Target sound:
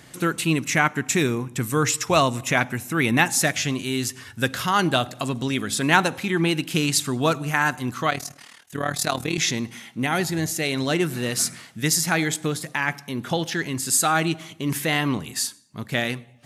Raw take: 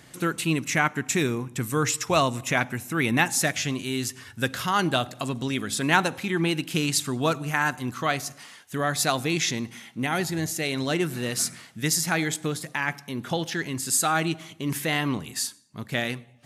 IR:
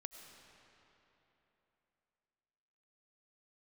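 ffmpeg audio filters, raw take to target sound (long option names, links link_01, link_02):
-filter_complex "[0:a]asettb=1/sr,asplit=3[link_01][link_02][link_03];[link_01]atrim=end=8.104[link_04];[link_02]atrim=start=8.1:end=9.38,asetpts=PTS-STARTPTS,afade=type=in:duration=0.004:curve=qsin,afade=type=out:start_time=1.276:duration=0.004:curve=qsin,tremolo=f=38:d=0.824[link_05];[link_03]atrim=start=9.376[link_06];[link_04][link_05]acrossfade=duration=0.004:curve1=hsin:curve2=qsin[link_07];[link_07][link_06]acrossfade=duration=0.004:curve1=qsin:curve2=hsin,volume=3dB"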